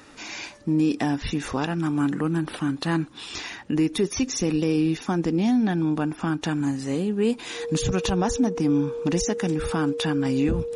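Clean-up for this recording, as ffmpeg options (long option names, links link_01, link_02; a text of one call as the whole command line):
ffmpeg -i in.wav -af "bandreject=frequency=470:width=30" out.wav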